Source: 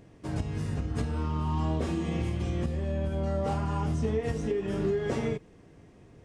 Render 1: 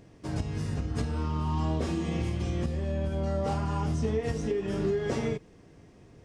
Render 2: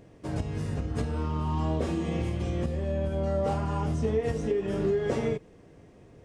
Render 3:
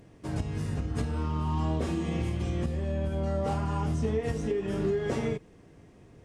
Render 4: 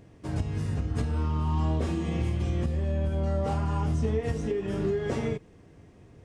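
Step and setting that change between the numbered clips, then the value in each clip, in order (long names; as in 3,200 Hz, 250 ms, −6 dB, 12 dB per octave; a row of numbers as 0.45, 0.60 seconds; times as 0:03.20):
parametric band, centre frequency: 5,200, 530, 14,000, 86 Hertz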